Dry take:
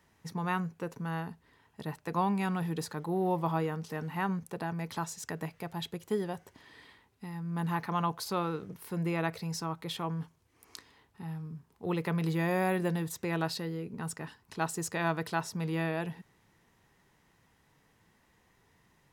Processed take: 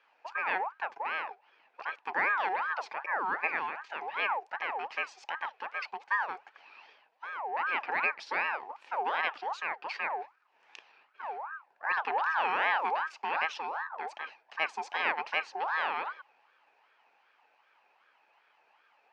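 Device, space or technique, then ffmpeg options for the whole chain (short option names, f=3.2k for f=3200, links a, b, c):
voice changer toy: -filter_complex "[0:a]asettb=1/sr,asplit=3[a][b][c];[a]atrim=end=3.004[d];[b]atrim=start=3:end=4.01,asetpts=PTS-STARTPTS,afade=t=in:d=0.004:c=qsin,afade=t=out:st=1.006:d=0.004:c=qsin,highpass=240[e];[c]atrim=start=4.006[f];[d][e]acrossfade=d=0.004:c1=hsin:c2=qsin[g];[g][f]acrossfade=d=0.004:c1=qsin:c2=hsin,aeval=exprs='val(0)*sin(2*PI*1000*n/s+1000*0.45/2.6*sin(2*PI*2.6*n/s))':c=same,highpass=500,equalizer=f=850:t=q:w=4:g=9,equalizer=f=1.7k:t=q:w=4:g=5,equalizer=f=2.5k:t=q:w=4:g=8,equalizer=f=3.6k:t=q:w=4:g=-4,lowpass=f=4.7k:w=0.5412,lowpass=f=4.7k:w=1.3066"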